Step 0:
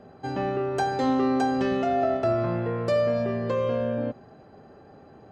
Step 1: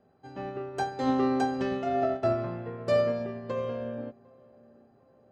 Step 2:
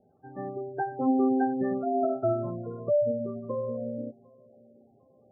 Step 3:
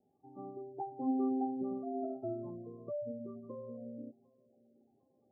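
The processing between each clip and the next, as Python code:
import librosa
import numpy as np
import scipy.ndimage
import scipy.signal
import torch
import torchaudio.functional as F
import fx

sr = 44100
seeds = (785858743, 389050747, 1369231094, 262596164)

y1 = fx.echo_filtered(x, sr, ms=751, feedback_pct=54, hz=1200.0, wet_db=-16)
y1 = fx.upward_expand(y1, sr, threshold_db=-31.0, expansion=2.5)
y2 = fx.spec_gate(y1, sr, threshold_db=-15, keep='strong')
y2 = fx.dynamic_eq(y2, sr, hz=260.0, q=1.3, threshold_db=-42.0, ratio=4.0, max_db=3)
y3 = scipy.signal.sosfilt(scipy.signal.cheby1(6, 9, 1200.0, 'lowpass', fs=sr, output='sos'), y2)
y3 = F.gain(torch.from_numpy(y3), -6.5).numpy()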